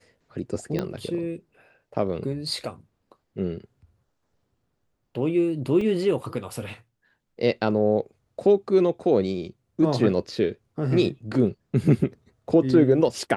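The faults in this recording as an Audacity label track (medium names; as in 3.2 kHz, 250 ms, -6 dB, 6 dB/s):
0.790000	0.790000	pop -14 dBFS
5.810000	5.810000	dropout 3.3 ms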